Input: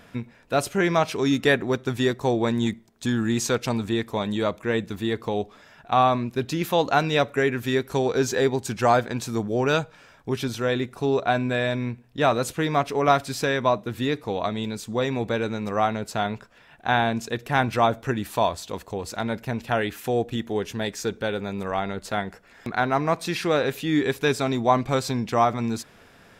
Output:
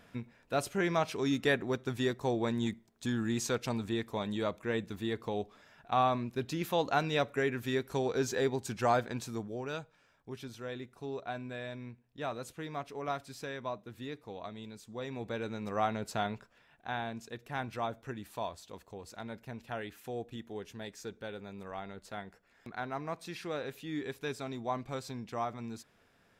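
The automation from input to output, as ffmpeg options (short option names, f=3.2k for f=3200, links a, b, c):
-af "volume=1dB,afade=t=out:st=9.15:d=0.48:silence=0.398107,afade=t=in:st=14.93:d=1.18:silence=0.316228,afade=t=out:st=16.11:d=0.78:silence=0.375837"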